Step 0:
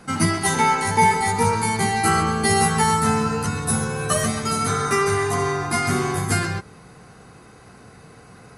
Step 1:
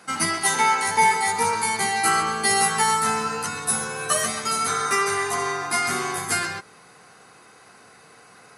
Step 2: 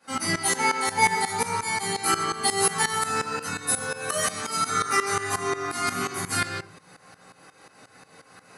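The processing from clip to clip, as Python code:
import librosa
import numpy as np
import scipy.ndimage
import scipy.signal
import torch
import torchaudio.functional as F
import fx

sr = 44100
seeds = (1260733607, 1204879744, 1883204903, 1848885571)

y1 = fx.highpass(x, sr, hz=880.0, slope=6)
y1 = y1 * 10.0 ** (1.5 / 20.0)
y2 = fx.room_shoebox(y1, sr, seeds[0], volume_m3=150.0, walls='furnished', distance_m=2.4)
y2 = fx.tremolo_shape(y2, sr, shape='saw_up', hz=5.6, depth_pct=85)
y2 = y2 * 10.0 ** (-3.0 / 20.0)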